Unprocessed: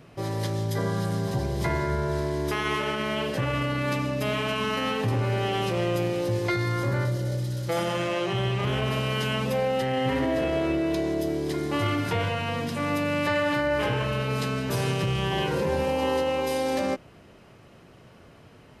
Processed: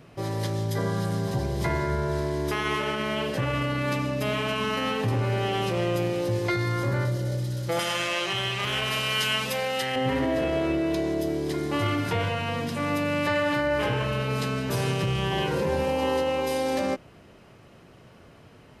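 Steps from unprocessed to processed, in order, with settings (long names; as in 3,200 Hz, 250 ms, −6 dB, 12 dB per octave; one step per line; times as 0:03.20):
0:07.79–0:09.96: tilt shelving filter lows −8.5 dB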